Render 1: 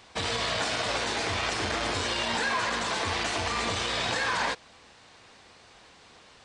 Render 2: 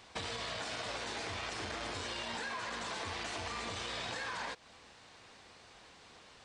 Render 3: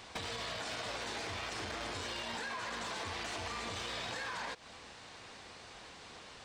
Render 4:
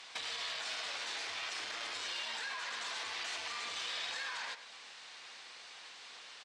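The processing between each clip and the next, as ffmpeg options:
-af "acompressor=threshold=0.02:ratio=6,volume=0.668"
-af "acompressor=threshold=0.00794:ratio=12,asoftclip=type=hard:threshold=0.0112,volume=1.88"
-filter_complex "[0:a]bandpass=f=3700:t=q:w=0.55:csg=0,asplit=2[s0][s1];[s1]adelay=105,volume=0.282,highshelf=f=4000:g=-2.36[s2];[s0][s2]amix=inputs=2:normalize=0,volume=1.41"

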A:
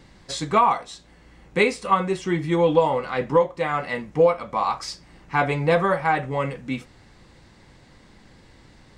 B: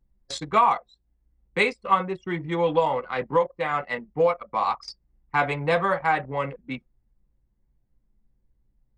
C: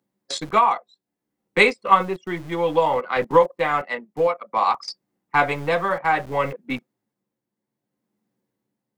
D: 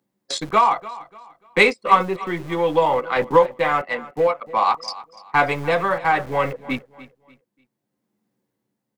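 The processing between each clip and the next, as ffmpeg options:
-filter_complex "[0:a]acrossover=split=280|390|2400[s0][s1][s2][s3];[s1]acompressor=threshold=0.0112:ratio=6[s4];[s0][s4][s2][s3]amix=inputs=4:normalize=0,anlmdn=63.1,lowshelf=f=390:g=-6"
-filter_complex "[0:a]tremolo=f=0.6:d=0.5,acrossover=split=180|470|3200[s0][s1][s2][s3];[s0]acrusher=bits=5:dc=4:mix=0:aa=0.000001[s4];[s4][s1][s2][s3]amix=inputs=4:normalize=0,volume=2.11"
-filter_complex "[0:a]asplit=2[s0][s1];[s1]asoftclip=type=tanh:threshold=0.112,volume=0.299[s2];[s0][s2]amix=inputs=2:normalize=0,aecho=1:1:294|588|882:0.126|0.0403|0.0129"

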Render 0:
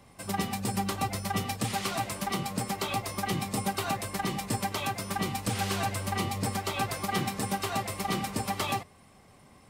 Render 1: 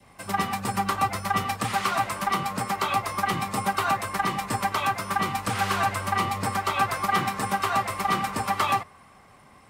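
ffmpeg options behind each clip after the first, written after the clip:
-filter_complex "[0:a]adynamicequalizer=threshold=0.00501:dfrequency=1200:dqfactor=1.6:tfrequency=1200:tqfactor=1.6:attack=5:release=100:ratio=0.375:range=3:mode=boostabove:tftype=bell,acrossover=split=110|790|2400[s0][s1][s2][s3];[s2]acontrast=89[s4];[s0][s1][s4][s3]amix=inputs=4:normalize=0"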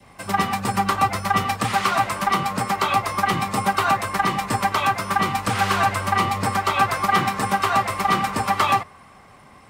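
-af "equalizer=f=12000:w=0.74:g=-3.5,volume=1.78"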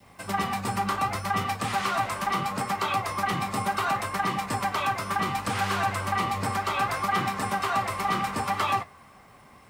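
-filter_complex "[0:a]flanger=delay=9.5:depth=9.2:regen=-62:speed=0.69:shape=triangular,asplit=2[s0][s1];[s1]alimiter=limit=0.0944:level=0:latency=1:release=20,volume=0.944[s2];[s0][s2]amix=inputs=2:normalize=0,acrusher=bits=9:mix=0:aa=0.000001,volume=0.501"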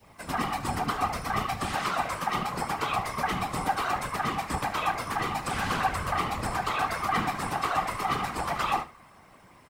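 -af "flanger=delay=6.9:depth=7.2:regen=-52:speed=1.7:shape=triangular,afftfilt=real='hypot(re,im)*cos(2*PI*random(0))':imag='hypot(re,im)*sin(2*PI*random(1))':win_size=512:overlap=0.75,aecho=1:1:73:0.168,volume=2.51"

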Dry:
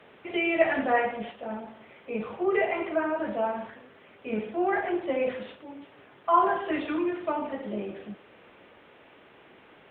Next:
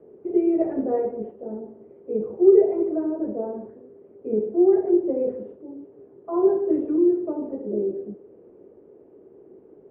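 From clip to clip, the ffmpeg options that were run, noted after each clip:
-af "lowpass=f=400:t=q:w=4.5"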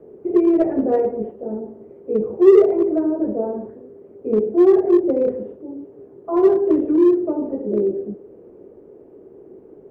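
-filter_complex "[0:a]lowshelf=f=68:g=6.5,asplit=2[s0][s1];[s1]volume=7.94,asoftclip=hard,volume=0.126,volume=0.501[s2];[s0][s2]amix=inputs=2:normalize=0,volume=1.26"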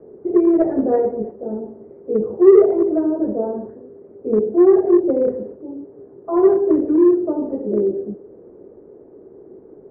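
-af "lowpass=f=1900:w=0.5412,lowpass=f=1900:w=1.3066,volume=1.12"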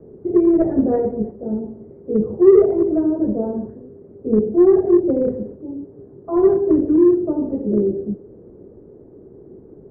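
-af "bass=f=250:g=14,treble=f=4000:g=0,volume=0.668"

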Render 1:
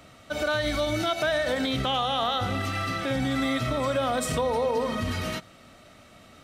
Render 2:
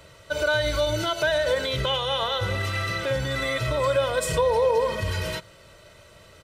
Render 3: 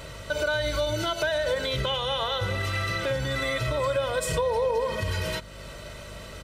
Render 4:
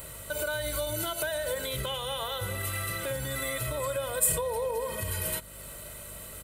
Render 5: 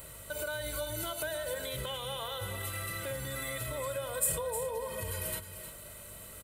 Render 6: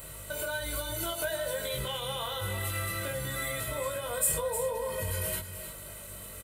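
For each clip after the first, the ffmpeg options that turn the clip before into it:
-af "aecho=1:1:2:0.85"
-af "acompressor=threshold=0.00794:ratio=2,aeval=exprs='val(0)+0.00224*(sin(2*PI*50*n/s)+sin(2*PI*2*50*n/s)/2+sin(2*PI*3*50*n/s)/3+sin(2*PI*4*50*n/s)/4+sin(2*PI*5*50*n/s)/5)':c=same,volume=2.66"
-af "aexciter=amount=12.5:drive=4:freq=8100,volume=0.501"
-af "aecho=1:1:311:0.299,volume=0.562"
-filter_complex "[0:a]asplit=2[s0][s1];[s1]volume=53.1,asoftclip=hard,volume=0.0188,volume=0.251[s2];[s0][s2]amix=inputs=2:normalize=0,asplit=2[s3][s4];[s4]adelay=21,volume=0.708[s5];[s3][s5]amix=inputs=2:normalize=0"

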